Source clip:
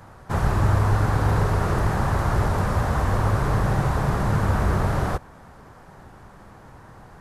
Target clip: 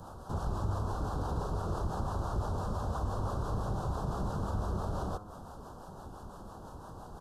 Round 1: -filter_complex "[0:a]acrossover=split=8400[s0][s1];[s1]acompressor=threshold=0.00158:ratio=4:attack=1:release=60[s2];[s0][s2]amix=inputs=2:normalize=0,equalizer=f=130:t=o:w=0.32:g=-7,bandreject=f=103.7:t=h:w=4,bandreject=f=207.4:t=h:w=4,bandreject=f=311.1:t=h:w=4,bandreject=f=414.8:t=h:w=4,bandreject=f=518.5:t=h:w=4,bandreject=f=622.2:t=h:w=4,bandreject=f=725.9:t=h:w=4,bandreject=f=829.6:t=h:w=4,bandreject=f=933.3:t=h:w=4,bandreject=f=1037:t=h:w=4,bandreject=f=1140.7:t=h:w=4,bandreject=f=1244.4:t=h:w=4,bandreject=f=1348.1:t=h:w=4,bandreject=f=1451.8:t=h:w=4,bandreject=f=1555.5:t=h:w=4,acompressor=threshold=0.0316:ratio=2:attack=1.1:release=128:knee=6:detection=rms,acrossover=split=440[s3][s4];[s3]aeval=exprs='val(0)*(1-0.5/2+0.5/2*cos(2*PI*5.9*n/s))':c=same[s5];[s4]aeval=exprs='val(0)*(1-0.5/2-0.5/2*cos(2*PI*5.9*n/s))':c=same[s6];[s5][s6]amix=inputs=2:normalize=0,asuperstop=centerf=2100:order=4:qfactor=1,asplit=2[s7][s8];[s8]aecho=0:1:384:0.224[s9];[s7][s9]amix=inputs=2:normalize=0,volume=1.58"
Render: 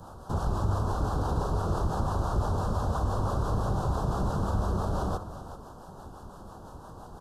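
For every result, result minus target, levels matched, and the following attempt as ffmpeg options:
echo-to-direct +11 dB; compression: peak gain reduction -5.5 dB
-filter_complex "[0:a]acrossover=split=8400[s0][s1];[s1]acompressor=threshold=0.00158:ratio=4:attack=1:release=60[s2];[s0][s2]amix=inputs=2:normalize=0,equalizer=f=130:t=o:w=0.32:g=-7,bandreject=f=103.7:t=h:w=4,bandreject=f=207.4:t=h:w=4,bandreject=f=311.1:t=h:w=4,bandreject=f=414.8:t=h:w=4,bandreject=f=518.5:t=h:w=4,bandreject=f=622.2:t=h:w=4,bandreject=f=725.9:t=h:w=4,bandreject=f=829.6:t=h:w=4,bandreject=f=933.3:t=h:w=4,bandreject=f=1037:t=h:w=4,bandreject=f=1140.7:t=h:w=4,bandreject=f=1244.4:t=h:w=4,bandreject=f=1348.1:t=h:w=4,bandreject=f=1451.8:t=h:w=4,bandreject=f=1555.5:t=h:w=4,acompressor=threshold=0.0316:ratio=2:attack=1.1:release=128:knee=6:detection=rms,acrossover=split=440[s3][s4];[s3]aeval=exprs='val(0)*(1-0.5/2+0.5/2*cos(2*PI*5.9*n/s))':c=same[s5];[s4]aeval=exprs='val(0)*(1-0.5/2-0.5/2*cos(2*PI*5.9*n/s))':c=same[s6];[s5][s6]amix=inputs=2:normalize=0,asuperstop=centerf=2100:order=4:qfactor=1,asplit=2[s7][s8];[s8]aecho=0:1:384:0.0631[s9];[s7][s9]amix=inputs=2:normalize=0,volume=1.58"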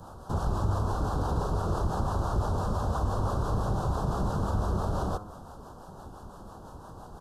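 compression: peak gain reduction -5.5 dB
-filter_complex "[0:a]acrossover=split=8400[s0][s1];[s1]acompressor=threshold=0.00158:ratio=4:attack=1:release=60[s2];[s0][s2]amix=inputs=2:normalize=0,equalizer=f=130:t=o:w=0.32:g=-7,bandreject=f=103.7:t=h:w=4,bandreject=f=207.4:t=h:w=4,bandreject=f=311.1:t=h:w=4,bandreject=f=414.8:t=h:w=4,bandreject=f=518.5:t=h:w=4,bandreject=f=622.2:t=h:w=4,bandreject=f=725.9:t=h:w=4,bandreject=f=829.6:t=h:w=4,bandreject=f=933.3:t=h:w=4,bandreject=f=1037:t=h:w=4,bandreject=f=1140.7:t=h:w=4,bandreject=f=1244.4:t=h:w=4,bandreject=f=1348.1:t=h:w=4,bandreject=f=1451.8:t=h:w=4,bandreject=f=1555.5:t=h:w=4,acompressor=threshold=0.00891:ratio=2:attack=1.1:release=128:knee=6:detection=rms,acrossover=split=440[s3][s4];[s3]aeval=exprs='val(0)*(1-0.5/2+0.5/2*cos(2*PI*5.9*n/s))':c=same[s5];[s4]aeval=exprs='val(0)*(1-0.5/2-0.5/2*cos(2*PI*5.9*n/s))':c=same[s6];[s5][s6]amix=inputs=2:normalize=0,asuperstop=centerf=2100:order=4:qfactor=1,asplit=2[s7][s8];[s8]aecho=0:1:384:0.0631[s9];[s7][s9]amix=inputs=2:normalize=0,volume=1.58"

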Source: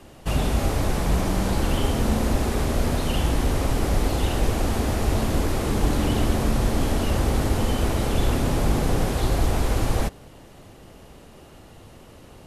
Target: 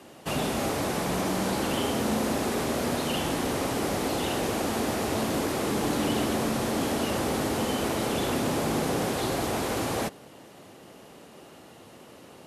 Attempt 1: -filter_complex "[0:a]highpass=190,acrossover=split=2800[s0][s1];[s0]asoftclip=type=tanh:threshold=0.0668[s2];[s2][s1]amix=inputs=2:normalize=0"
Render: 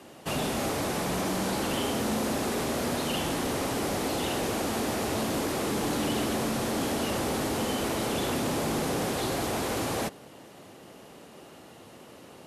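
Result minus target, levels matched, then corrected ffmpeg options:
saturation: distortion +11 dB
-filter_complex "[0:a]highpass=190,acrossover=split=2800[s0][s1];[s0]asoftclip=type=tanh:threshold=0.158[s2];[s2][s1]amix=inputs=2:normalize=0"

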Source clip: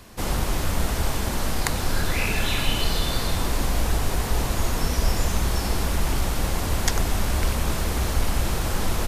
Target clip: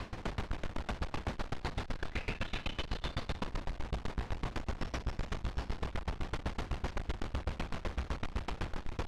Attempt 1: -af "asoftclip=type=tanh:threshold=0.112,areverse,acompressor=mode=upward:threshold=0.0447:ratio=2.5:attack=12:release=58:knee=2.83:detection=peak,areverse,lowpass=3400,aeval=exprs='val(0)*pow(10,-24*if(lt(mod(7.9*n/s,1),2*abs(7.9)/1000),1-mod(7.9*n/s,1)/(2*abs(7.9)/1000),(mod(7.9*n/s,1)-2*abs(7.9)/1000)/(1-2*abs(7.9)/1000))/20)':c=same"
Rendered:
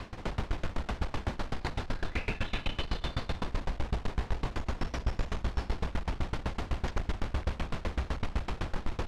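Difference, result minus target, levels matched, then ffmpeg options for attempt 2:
saturation: distortion -7 dB
-af "asoftclip=type=tanh:threshold=0.0355,areverse,acompressor=mode=upward:threshold=0.0447:ratio=2.5:attack=12:release=58:knee=2.83:detection=peak,areverse,lowpass=3400,aeval=exprs='val(0)*pow(10,-24*if(lt(mod(7.9*n/s,1),2*abs(7.9)/1000),1-mod(7.9*n/s,1)/(2*abs(7.9)/1000),(mod(7.9*n/s,1)-2*abs(7.9)/1000)/(1-2*abs(7.9)/1000))/20)':c=same"

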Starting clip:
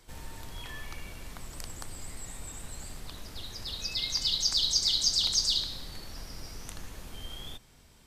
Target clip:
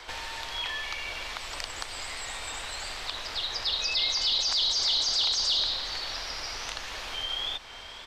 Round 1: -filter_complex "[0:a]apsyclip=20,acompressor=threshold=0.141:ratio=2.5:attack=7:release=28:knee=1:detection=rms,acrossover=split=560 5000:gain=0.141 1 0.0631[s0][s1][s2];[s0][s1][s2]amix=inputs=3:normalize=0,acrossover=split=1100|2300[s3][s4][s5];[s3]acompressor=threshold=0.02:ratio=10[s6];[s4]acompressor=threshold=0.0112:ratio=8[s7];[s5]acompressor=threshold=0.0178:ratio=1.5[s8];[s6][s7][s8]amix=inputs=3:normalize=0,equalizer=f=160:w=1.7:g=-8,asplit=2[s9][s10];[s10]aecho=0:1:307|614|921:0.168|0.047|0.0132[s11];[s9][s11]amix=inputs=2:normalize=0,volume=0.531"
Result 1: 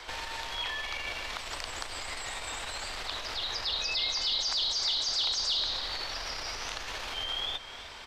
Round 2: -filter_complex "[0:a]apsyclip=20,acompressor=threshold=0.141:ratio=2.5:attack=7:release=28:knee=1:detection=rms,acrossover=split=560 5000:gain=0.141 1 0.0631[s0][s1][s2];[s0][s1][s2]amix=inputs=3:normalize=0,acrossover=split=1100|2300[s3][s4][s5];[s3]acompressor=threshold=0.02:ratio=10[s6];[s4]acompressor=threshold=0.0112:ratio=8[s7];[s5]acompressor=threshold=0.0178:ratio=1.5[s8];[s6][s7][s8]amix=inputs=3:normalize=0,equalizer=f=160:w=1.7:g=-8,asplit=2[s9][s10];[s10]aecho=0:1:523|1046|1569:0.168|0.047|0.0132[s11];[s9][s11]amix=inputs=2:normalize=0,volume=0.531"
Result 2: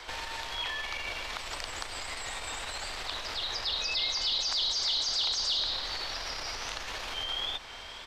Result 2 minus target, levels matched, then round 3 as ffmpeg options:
compression: peak gain reduction +5.5 dB
-filter_complex "[0:a]apsyclip=20,acompressor=threshold=0.422:ratio=2.5:attack=7:release=28:knee=1:detection=rms,acrossover=split=560 5000:gain=0.141 1 0.0631[s0][s1][s2];[s0][s1][s2]amix=inputs=3:normalize=0,acrossover=split=1100|2300[s3][s4][s5];[s3]acompressor=threshold=0.02:ratio=10[s6];[s4]acompressor=threshold=0.0112:ratio=8[s7];[s5]acompressor=threshold=0.0178:ratio=1.5[s8];[s6][s7][s8]amix=inputs=3:normalize=0,equalizer=f=160:w=1.7:g=-8,asplit=2[s9][s10];[s10]aecho=0:1:523|1046|1569:0.168|0.047|0.0132[s11];[s9][s11]amix=inputs=2:normalize=0,volume=0.531"

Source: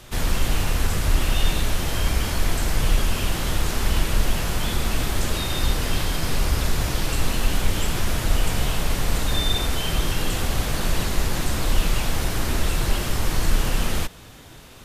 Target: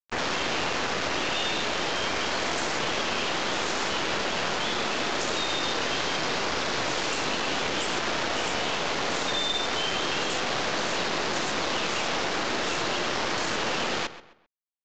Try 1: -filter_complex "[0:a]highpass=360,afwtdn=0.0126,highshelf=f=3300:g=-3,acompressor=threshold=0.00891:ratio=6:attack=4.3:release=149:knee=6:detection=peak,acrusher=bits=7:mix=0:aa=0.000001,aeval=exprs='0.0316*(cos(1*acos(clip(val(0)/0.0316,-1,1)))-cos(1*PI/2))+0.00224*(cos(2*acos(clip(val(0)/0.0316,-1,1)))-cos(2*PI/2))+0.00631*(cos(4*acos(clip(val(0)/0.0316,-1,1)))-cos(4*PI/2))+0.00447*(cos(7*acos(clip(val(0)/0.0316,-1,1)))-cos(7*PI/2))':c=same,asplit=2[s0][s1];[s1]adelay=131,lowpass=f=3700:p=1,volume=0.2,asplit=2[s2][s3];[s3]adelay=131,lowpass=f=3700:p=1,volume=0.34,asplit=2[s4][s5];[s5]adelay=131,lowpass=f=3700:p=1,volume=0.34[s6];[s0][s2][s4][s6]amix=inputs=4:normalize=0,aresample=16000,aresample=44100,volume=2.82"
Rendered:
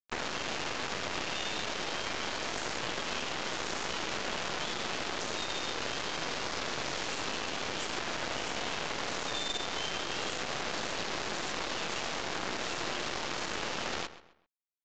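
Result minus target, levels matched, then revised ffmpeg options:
compression: peak gain reduction +6 dB
-filter_complex "[0:a]highpass=360,afwtdn=0.0126,highshelf=f=3300:g=-3,acompressor=threshold=0.02:ratio=6:attack=4.3:release=149:knee=6:detection=peak,acrusher=bits=7:mix=0:aa=0.000001,aeval=exprs='0.0316*(cos(1*acos(clip(val(0)/0.0316,-1,1)))-cos(1*PI/2))+0.00224*(cos(2*acos(clip(val(0)/0.0316,-1,1)))-cos(2*PI/2))+0.00631*(cos(4*acos(clip(val(0)/0.0316,-1,1)))-cos(4*PI/2))+0.00447*(cos(7*acos(clip(val(0)/0.0316,-1,1)))-cos(7*PI/2))':c=same,asplit=2[s0][s1];[s1]adelay=131,lowpass=f=3700:p=1,volume=0.2,asplit=2[s2][s3];[s3]adelay=131,lowpass=f=3700:p=1,volume=0.34,asplit=2[s4][s5];[s5]adelay=131,lowpass=f=3700:p=1,volume=0.34[s6];[s0][s2][s4][s6]amix=inputs=4:normalize=0,aresample=16000,aresample=44100,volume=2.82"

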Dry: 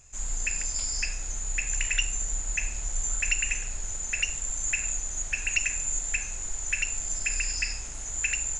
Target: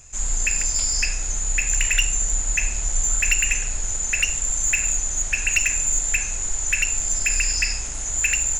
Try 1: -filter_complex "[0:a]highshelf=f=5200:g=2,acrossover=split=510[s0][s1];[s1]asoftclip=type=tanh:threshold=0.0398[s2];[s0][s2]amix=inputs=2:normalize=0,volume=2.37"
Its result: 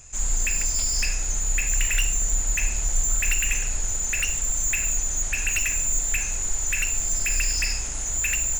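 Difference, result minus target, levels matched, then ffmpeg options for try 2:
saturation: distortion +11 dB
-filter_complex "[0:a]highshelf=f=5200:g=2,acrossover=split=510[s0][s1];[s1]asoftclip=type=tanh:threshold=0.133[s2];[s0][s2]amix=inputs=2:normalize=0,volume=2.37"

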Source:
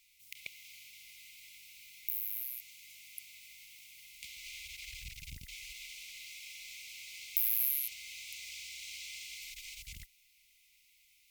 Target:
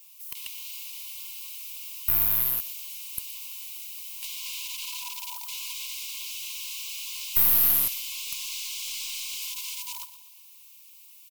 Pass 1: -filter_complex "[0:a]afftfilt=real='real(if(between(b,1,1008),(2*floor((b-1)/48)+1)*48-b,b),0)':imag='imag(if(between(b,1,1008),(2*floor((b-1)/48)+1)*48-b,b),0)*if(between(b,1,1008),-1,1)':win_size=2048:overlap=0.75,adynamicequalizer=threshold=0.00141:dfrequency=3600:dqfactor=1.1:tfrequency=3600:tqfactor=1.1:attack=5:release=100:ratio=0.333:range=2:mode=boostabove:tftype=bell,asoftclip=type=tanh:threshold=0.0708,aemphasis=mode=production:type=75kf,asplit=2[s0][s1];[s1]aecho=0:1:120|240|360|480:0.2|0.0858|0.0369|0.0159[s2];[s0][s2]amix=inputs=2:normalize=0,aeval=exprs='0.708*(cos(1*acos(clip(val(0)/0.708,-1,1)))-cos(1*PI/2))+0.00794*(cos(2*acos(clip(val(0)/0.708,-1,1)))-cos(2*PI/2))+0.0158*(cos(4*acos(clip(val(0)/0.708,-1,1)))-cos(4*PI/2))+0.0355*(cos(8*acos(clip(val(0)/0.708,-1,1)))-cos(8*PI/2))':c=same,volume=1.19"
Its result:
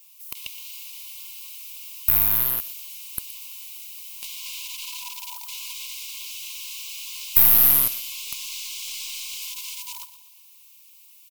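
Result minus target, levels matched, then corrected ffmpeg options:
saturation: distortion -8 dB
-filter_complex "[0:a]afftfilt=real='real(if(between(b,1,1008),(2*floor((b-1)/48)+1)*48-b,b),0)':imag='imag(if(between(b,1,1008),(2*floor((b-1)/48)+1)*48-b,b),0)*if(between(b,1,1008),-1,1)':win_size=2048:overlap=0.75,adynamicequalizer=threshold=0.00141:dfrequency=3600:dqfactor=1.1:tfrequency=3600:tqfactor=1.1:attack=5:release=100:ratio=0.333:range=2:mode=boostabove:tftype=bell,asoftclip=type=tanh:threshold=0.0188,aemphasis=mode=production:type=75kf,asplit=2[s0][s1];[s1]aecho=0:1:120|240|360|480:0.2|0.0858|0.0369|0.0159[s2];[s0][s2]amix=inputs=2:normalize=0,aeval=exprs='0.708*(cos(1*acos(clip(val(0)/0.708,-1,1)))-cos(1*PI/2))+0.00794*(cos(2*acos(clip(val(0)/0.708,-1,1)))-cos(2*PI/2))+0.0158*(cos(4*acos(clip(val(0)/0.708,-1,1)))-cos(4*PI/2))+0.0355*(cos(8*acos(clip(val(0)/0.708,-1,1)))-cos(8*PI/2))':c=same,volume=1.19"

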